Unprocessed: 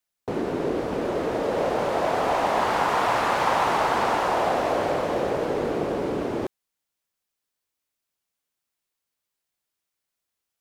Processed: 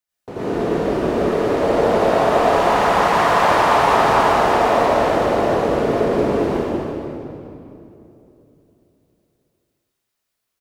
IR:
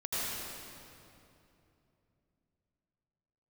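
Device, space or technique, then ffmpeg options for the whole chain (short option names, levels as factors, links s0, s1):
cave: -filter_complex "[0:a]aecho=1:1:196:0.376[s0];[1:a]atrim=start_sample=2205[s1];[s0][s1]afir=irnorm=-1:irlink=0"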